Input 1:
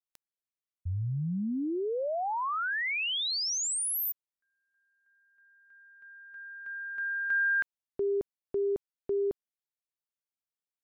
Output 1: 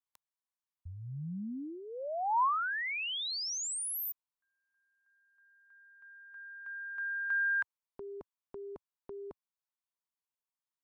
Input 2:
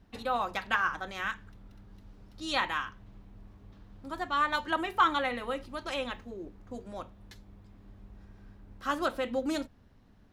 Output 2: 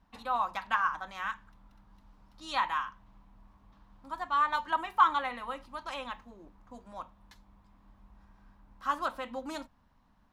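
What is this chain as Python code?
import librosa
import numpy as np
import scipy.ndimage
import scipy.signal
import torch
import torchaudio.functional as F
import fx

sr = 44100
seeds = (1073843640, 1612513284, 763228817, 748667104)

y = fx.graphic_eq_15(x, sr, hz=(100, 400, 1000), db=(-8, -10, 11))
y = F.gain(torch.from_numpy(y), -5.5).numpy()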